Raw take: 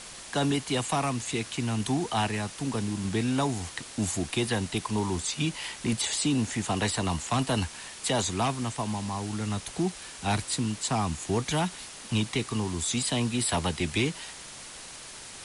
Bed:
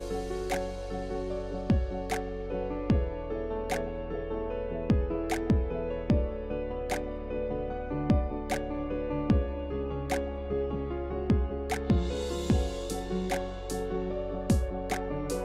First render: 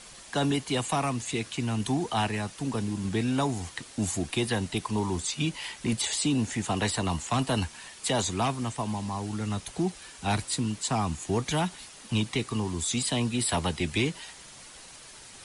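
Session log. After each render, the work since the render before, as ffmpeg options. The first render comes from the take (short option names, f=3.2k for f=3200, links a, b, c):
-af "afftdn=nr=6:nf=-44"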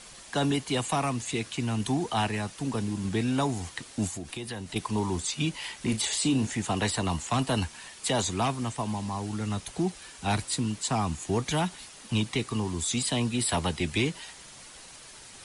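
-filter_complex "[0:a]asettb=1/sr,asplit=3[a][b][c];[a]atrim=end=4.074[d];[b]atrim=start=4.07:end=4.76,asetpts=PTS-STARTPTS,afade=t=in:d=0.004:c=qsin,afade=t=out:st=0.686:d=0.004:c=qsin,acompressor=threshold=-34dB:ratio=4:attack=3.2:release=140:knee=1:detection=peak[e];[c]atrim=start=4.756[f];[d][e]acrossfade=d=0.004:c1=hsin:c2=qsin[g];[g][f]acrossfade=d=0.004:c1=qsin:c2=hsin,asettb=1/sr,asplit=3[h][i][j];[h]atrim=end=5.764[k];[i]atrim=start=5.76:end=6.47,asetpts=PTS-STARTPTS,afade=t=in:d=0.004:c=qsin,afade=t=out:st=0.706:d=0.004:c=qsin,asplit=2[l][m];[m]adelay=37,volume=-10dB[n];[l][n]amix=inputs=2:normalize=0,atrim=end_sample=31311[o];[j]atrim=start=6.466[p];[k][o]acrossfade=d=0.004:c1=hsin:c2=qsin[q];[q][p]acrossfade=d=0.004:c1=qsin:c2=hsin"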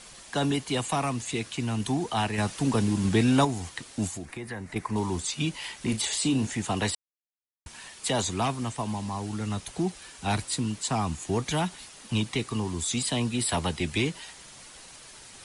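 -filter_complex "[0:a]asettb=1/sr,asplit=3[a][b][c];[a]atrim=end=2.384[d];[b]atrim=start=2.38:end=3.45,asetpts=PTS-STARTPTS,afade=t=in:d=0.004:c=qsin,afade=t=out:st=1.066:d=0.004:c=qsin,acontrast=43[e];[c]atrim=start=3.446[f];[d][e]acrossfade=d=0.004:c1=hsin:c2=qsin[g];[g][f]acrossfade=d=0.004:c1=qsin:c2=hsin,asettb=1/sr,asplit=3[h][i][j];[h]atrim=end=4.254[k];[i]atrim=start=4.25:end=4.96,asetpts=PTS-STARTPTS,afade=t=in:d=0.004:c=qsin,afade=t=out:st=0.706:d=0.004:c=qsin,highshelf=f=2.5k:t=q:w=3:g=-6[l];[j]atrim=start=4.956[m];[k][l]acrossfade=d=0.004:c1=hsin:c2=qsin[n];[n][m]acrossfade=d=0.004:c1=qsin:c2=hsin,asplit=3[o][p][q];[o]atrim=end=6.95,asetpts=PTS-STARTPTS,afade=t=out:st=6.946:d=0.004:c=hsin[r];[p]atrim=start=6.95:end=7.66,asetpts=PTS-STARTPTS,volume=0[s];[q]atrim=start=7.66,asetpts=PTS-STARTPTS,afade=t=in:d=0.004:c=hsin[t];[r][s][t]concat=n=3:v=0:a=1"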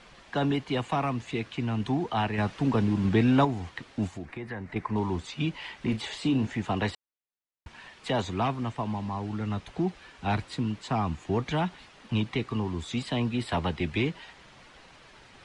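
-af "lowpass=2.8k"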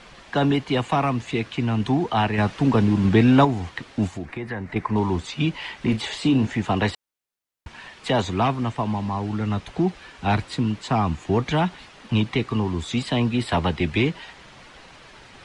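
-af "volume=6.5dB"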